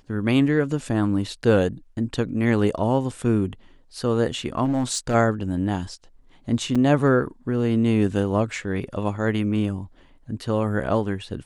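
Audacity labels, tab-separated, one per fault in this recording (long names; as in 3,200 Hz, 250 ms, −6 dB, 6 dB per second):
4.640000	5.150000	clipping −18.5 dBFS
6.750000	6.760000	drop-out 5.2 ms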